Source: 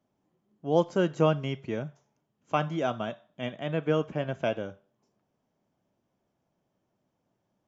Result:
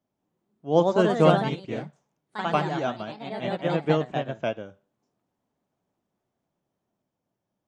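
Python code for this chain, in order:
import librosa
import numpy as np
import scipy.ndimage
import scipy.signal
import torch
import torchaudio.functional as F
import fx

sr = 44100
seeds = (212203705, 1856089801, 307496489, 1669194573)

y = fx.echo_pitch(x, sr, ms=187, semitones=2, count=3, db_per_echo=-3.0)
y = fx.upward_expand(y, sr, threshold_db=-37.0, expansion=1.5)
y = y * librosa.db_to_amplitude(4.5)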